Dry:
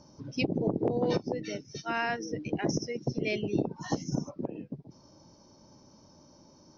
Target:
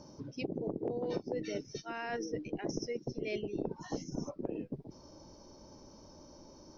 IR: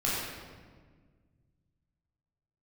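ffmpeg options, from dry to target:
-af "asubboost=boost=5.5:cutoff=54,areverse,acompressor=threshold=-38dB:ratio=6,areverse,equalizer=frequency=420:width_type=o:width=1.2:gain=5,volume=1dB"

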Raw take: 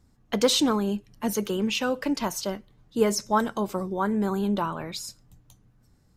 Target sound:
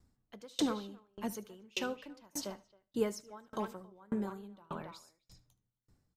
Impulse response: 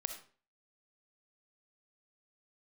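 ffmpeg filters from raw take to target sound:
-filter_complex "[0:a]asplit=2[link_01][link_02];[link_02]adelay=270,highpass=300,lowpass=3400,asoftclip=type=hard:threshold=-17.5dB,volume=-8dB[link_03];[link_01][link_03]amix=inputs=2:normalize=0,asplit=2[link_04][link_05];[1:a]atrim=start_sample=2205,adelay=75[link_06];[link_05][link_06]afir=irnorm=-1:irlink=0,volume=-14.5dB[link_07];[link_04][link_07]amix=inputs=2:normalize=0,aeval=exprs='val(0)*pow(10,-33*if(lt(mod(1.7*n/s,1),2*abs(1.7)/1000),1-mod(1.7*n/s,1)/(2*abs(1.7)/1000),(mod(1.7*n/s,1)-2*abs(1.7)/1000)/(1-2*abs(1.7)/1000))/20)':channel_layout=same,volume=-5.5dB"

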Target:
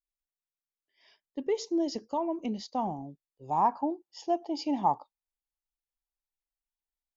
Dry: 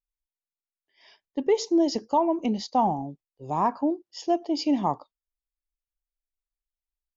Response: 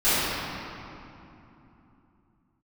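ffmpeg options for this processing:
-af "asetnsamples=nb_out_samples=441:pad=0,asendcmd='3.48 equalizer g 11',equalizer=frequency=840:width=3.7:gain=-4,volume=-7dB"

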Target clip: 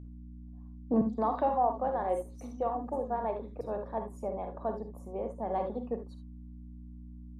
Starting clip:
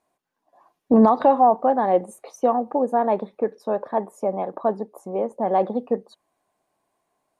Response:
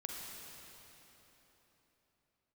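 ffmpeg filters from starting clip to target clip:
-filter_complex "[0:a]agate=range=-8dB:threshold=-51dB:ratio=16:detection=peak,aeval=exprs='val(0)+0.0251*(sin(2*PI*60*n/s)+sin(2*PI*2*60*n/s)/2+sin(2*PI*3*60*n/s)/3+sin(2*PI*4*60*n/s)/4+sin(2*PI*5*60*n/s)/5)':channel_layout=same,asettb=1/sr,asplit=3[link_01][link_02][link_03];[link_01]atrim=end=1.014[link_04];[link_02]atrim=start=1.01:end=3.61,asetpts=PTS-STARTPTS,afade=type=in:duration=0.004:curve=qsin,afade=type=out:start_time=2.596:duration=0.004:curve=qsin,acrossover=split=250|4900[link_05][link_06][link_07];[link_07]adelay=50[link_08];[link_06]adelay=170[link_09];[link_05][link_09][link_08]amix=inputs=3:normalize=0,atrim=end_sample=114660[link_10];[link_03]atrim=start=3.606[link_11];[link_04][link_10]acrossfade=duration=0.004:curve1=hsin:curve2=qsin[link_12];[link_12][link_11]acrossfade=duration=0.004:curve1=qsin:curve2=hsin[link_13];[1:a]atrim=start_sample=2205,afade=type=out:start_time=0.13:duration=0.01,atrim=end_sample=6174[link_14];[link_13][link_14]afir=irnorm=-1:irlink=0,volume=-8dB"

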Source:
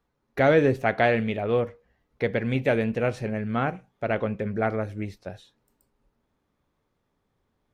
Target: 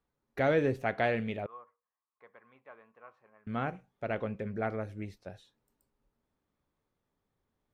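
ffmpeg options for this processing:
ffmpeg -i in.wav -filter_complex "[0:a]asettb=1/sr,asplit=3[link_01][link_02][link_03];[link_01]atrim=end=1.464[link_04];[link_02]atrim=start=1.46:end=3.47,asetpts=PTS-STARTPTS,afade=type=in:duration=0.004:curve=qsin,afade=type=out:start_time=2.006:duration=0.004:curve=qsin,bandpass=frequency=1100:width_type=q:width=9.4:csg=0[link_05];[link_03]atrim=start=3.466[link_06];[link_04][link_05]acrossfade=duration=0.004:curve1=hsin:curve2=qsin[link_07];[link_07][link_06]acrossfade=duration=0.004:curve1=qsin:curve2=hsin,volume=-8dB" out.wav

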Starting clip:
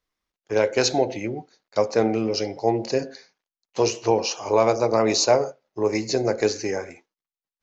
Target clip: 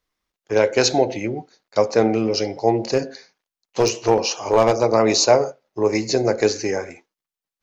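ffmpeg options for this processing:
ffmpeg -i in.wav -filter_complex "[0:a]asplit=3[link_01][link_02][link_03];[link_01]afade=type=out:start_time=2.81:duration=0.02[link_04];[link_02]aeval=exprs='clip(val(0),-1,0.158)':channel_layout=same,afade=type=in:start_time=2.81:duration=0.02,afade=type=out:start_time=4.82:duration=0.02[link_05];[link_03]afade=type=in:start_time=4.82:duration=0.02[link_06];[link_04][link_05][link_06]amix=inputs=3:normalize=0,volume=3.5dB" out.wav

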